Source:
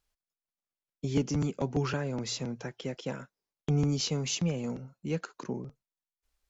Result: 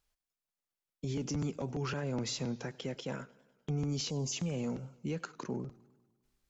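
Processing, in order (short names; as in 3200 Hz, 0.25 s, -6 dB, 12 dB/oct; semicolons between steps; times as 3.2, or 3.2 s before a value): spectral gain 4.1–4.33, 1100–4600 Hz -24 dB; limiter -27.5 dBFS, peak gain reduction 11 dB; warbling echo 0.101 s, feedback 61%, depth 123 cents, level -22.5 dB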